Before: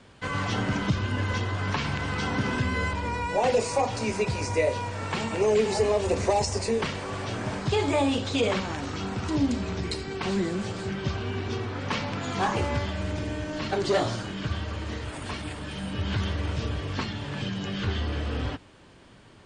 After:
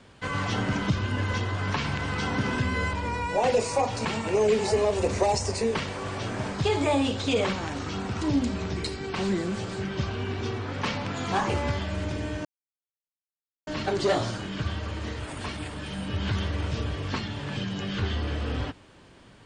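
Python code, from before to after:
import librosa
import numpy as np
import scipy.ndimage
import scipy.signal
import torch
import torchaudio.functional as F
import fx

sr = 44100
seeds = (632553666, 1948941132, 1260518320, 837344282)

y = fx.edit(x, sr, fx.cut(start_s=4.05, length_s=1.07),
    fx.insert_silence(at_s=13.52, length_s=1.22), tone=tone)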